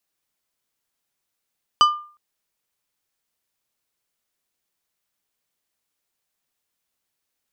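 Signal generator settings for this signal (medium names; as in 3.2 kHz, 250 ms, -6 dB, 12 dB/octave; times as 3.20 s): glass hit plate, length 0.36 s, lowest mode 1.2 kHz, decay 0.43 s, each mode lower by 6.5 dB, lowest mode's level -8 dB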